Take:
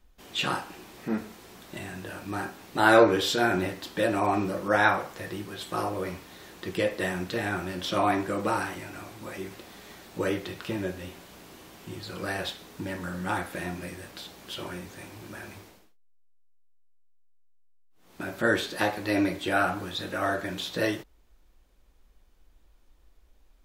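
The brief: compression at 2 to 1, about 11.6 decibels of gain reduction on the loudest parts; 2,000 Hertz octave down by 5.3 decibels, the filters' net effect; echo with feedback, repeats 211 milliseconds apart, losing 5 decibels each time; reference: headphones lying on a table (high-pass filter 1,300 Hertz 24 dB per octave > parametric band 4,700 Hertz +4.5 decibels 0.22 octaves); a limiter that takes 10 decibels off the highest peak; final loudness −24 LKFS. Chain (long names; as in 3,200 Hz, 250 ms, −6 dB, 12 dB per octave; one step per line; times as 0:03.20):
parametric band 2,000 Hz −6.5 dB
downward compressor 2 to 1, threshold −35 dBFS
brickwall limiter −26 dBFS
high-pass filter 1,300 Hz 24 dB per octave
parametric band 4,700 Hz +4.5 dB 0.22 octaves
repeating echo 211 ms, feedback 56%, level −5 dB
level +18.5 dB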